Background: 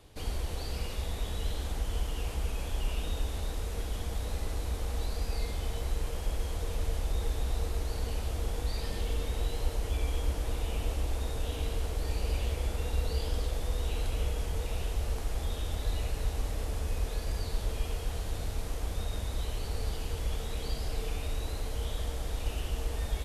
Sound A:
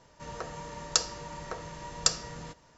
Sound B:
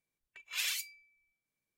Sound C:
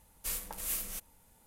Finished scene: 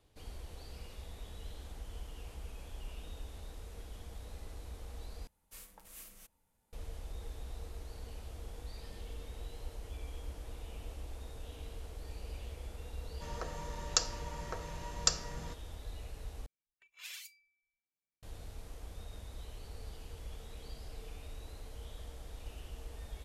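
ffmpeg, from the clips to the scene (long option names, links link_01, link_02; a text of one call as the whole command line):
ffmpeg -i bed.wav -i cue0.wav -i cue1.wav -i cue2.wav -filter_complex "[0:a]volume=-13dB[link_01];[3:a]highshelf=frequency=6800:gain=-5[link_02];[link_01]asplit=3[link_03][link_04][link_05];[link_03]atrim=end=5.274[link_06];[link_02]atrim=end=1.46,asetpts=PTS-STARTPTS,volume=-13dB[link_07];[link_04]atrim=start=6.726:end=16.464[link_08];[2:a]atrim=end=1.77,asetpts=PTS-STARTPTS,volume=-12.5dB[link_09];[link_05]atrim=start=18.226[link_10];[1:a]atrim=end=2.77,asetpts=PTS-STARTPTS,volume=-4dB,afade=type=in:duration=0.004:curve=hsin,afade=type=out:start_time=2.766:duration=0.004:curve=hsin,adelay=13010[link_11];[link_06][link_07]acrossfade=duration=0.004:curve1=hsin:curve2=hsin[link_12];[link_12][link_08]acrossfade=duration=0.004:curve1=hsin:curve2=hsin[link_13];[link_13][link_09]acrossfade=duration=0.004:curve1=hsin:curve2=hsin[link_14];[link_14][link_10]acrossfade=duration=0.004:curve1=hsin:curve2=hsin[link_15];[link_15][link_11]amix=inputs=2:normalize=0" out.wav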